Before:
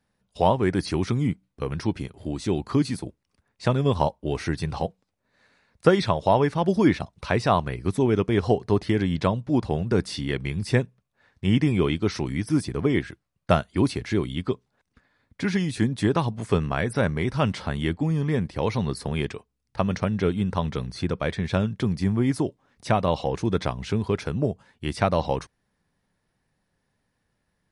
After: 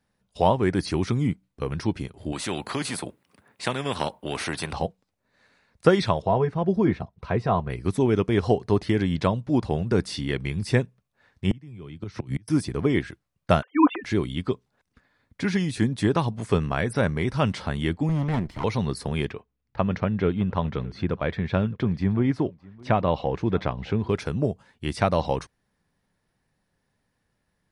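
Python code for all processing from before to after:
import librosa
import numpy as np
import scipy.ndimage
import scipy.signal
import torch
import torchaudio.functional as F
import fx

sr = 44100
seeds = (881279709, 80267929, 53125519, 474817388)

y = fx.chain(x, sr, fx.highpass(hz=160.0, slope=12),
    fx.peak_eq(hz=5700.0, db=-10.0, octaves=1.0),
    fx.spectral_comp(ratio=2.0), at=(2.32, 4.73))
y = fx.chain(y, sr, fx.lowpass(hz=1100.0, slope=6),
    fx.notch_comb(f0_hz=290.0), at=(6.22, 7.7))
y = fx.chain(y, sr, fx.peak_eq(hz=120.0, db=10.5, octaves=0.99),
    fx.gate_flip(shuts_db=-13.0, range_db=-30),
    fx.band_squash(depth_pct=100), at=(11.51, 12.48))
y = fx.chain(y, sr, fx.sine_speech(),
    fx.peak_eq(hz=1300.0, db=7.0, octaves=1.8),
    fx.comb(ms=4.0, depth=0.75), at=(13.62, 14.04))
y = fx.chain(y, sr, fx.lower_of_two(delay_ms=0.96),
    fx.high_shelf(hz=7700.0, db=-10.0), at=(18.09, 18.64))
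y = fx.chain(y, sr, fx.lowpass(hz=3000.0, slope=12),
    fx.echo_single(ms=614, db=-23.5), at=(19.3, 24.09))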